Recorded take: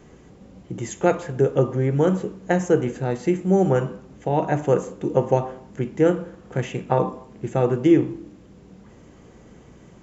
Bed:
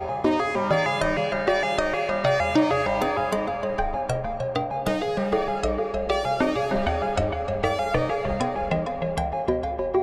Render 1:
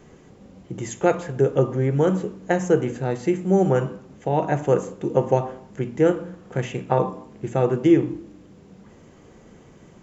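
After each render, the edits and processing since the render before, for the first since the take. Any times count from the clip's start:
hum removal 60 Hz, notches 5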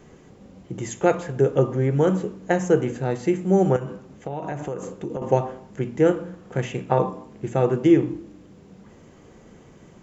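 0:03.76–0:05.22: downward compressor 12 to 1, threshold −25 dBFS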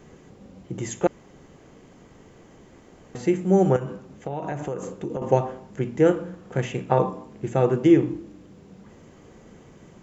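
0:01.07–0:03.15: fill with room tone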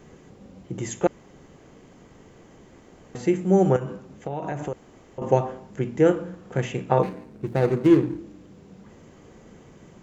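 0:04.73–0:05.18: fill with room tone
0:07.03–0:08.18: running median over 41 samples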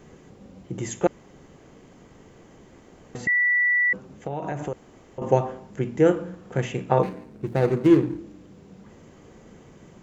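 0:03.27–0:03.93: beep over 1,960 Hz −17.5 dBFS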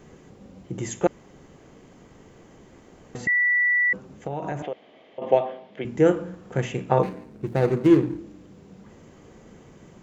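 0:04.62–0:05.85: loudspeaker in its box 300–4,000 Hz, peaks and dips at 360 Hz −4 dB, 640 Hz +7 dB, 960 Hz −4 dB, 1,400 Hz −6 dB, 2,200 Hz +5 dB, 3,300 Hz +9 dB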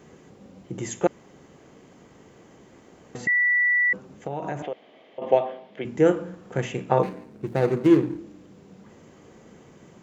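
high-pass filter 120 Hz 6 dB per octave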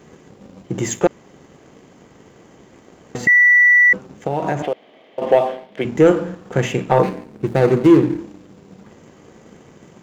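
leveller curve on the samples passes 1
in parallel at 0 dB: brickwall limiter −13 dBFS, peak gain reduction 7.5 dB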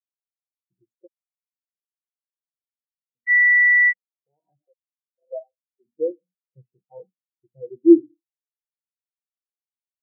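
leveller curve on the samples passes 1
every bin expanded away from the loudest bin 4 to 1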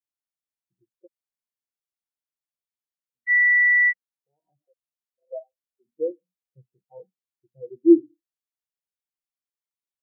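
level −2.5 dB

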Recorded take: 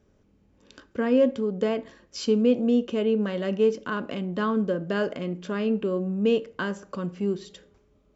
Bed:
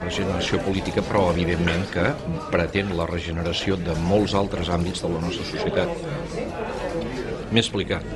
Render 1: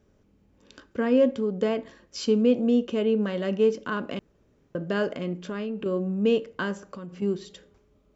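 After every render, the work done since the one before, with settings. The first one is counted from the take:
0:04.19–0:04.75: fill with room tone
0:05.35–0:05.86: downward compressor, threshold −28 dBFS
0:06.81–0:07.22: downward compressor 12 to 1, threshold −34 dBFS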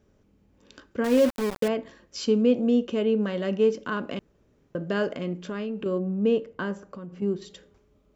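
0:01.04–0:01.68: centre clipping without the shift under −27.5 dBFS
0:05.98–0:07.42: high-shelf EQ 2,000 Hz −8.5 dB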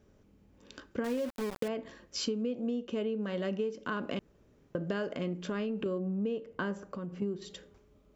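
downward compressor 12 to 1, threshold −30 dBFS, peak gain reduction 15 dB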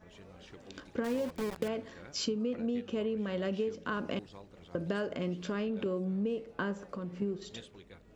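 mix in bed −29.5 dB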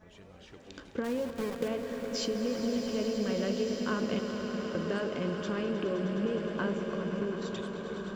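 echo that builds up and dies away 104 ms, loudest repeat 5, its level −12.5 dB
slow-attack reverb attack 1,540 ms, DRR 5.5 dB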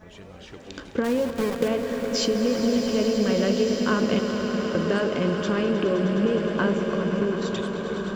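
level +9 dB

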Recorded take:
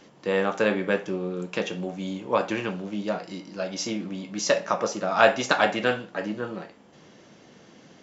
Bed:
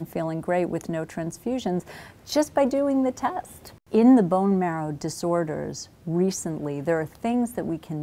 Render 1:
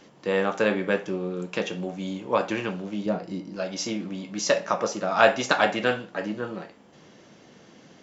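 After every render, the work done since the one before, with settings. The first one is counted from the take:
0:03.06–0:03.56: tilt shelving filter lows +6.5 dB, about 630 Hz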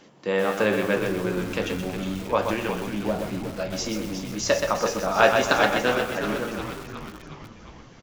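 on a send: echo with shifted repeats 361 ms, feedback 61%, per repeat −87 Hz, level −9 dB
on the sum: feedback echo at a low word length 126 ms, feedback 35%, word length 6 bits, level −5 dB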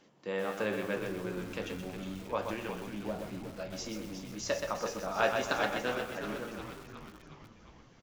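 level −11 dB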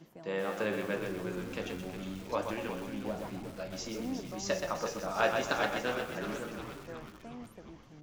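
mix in bed −23 dB

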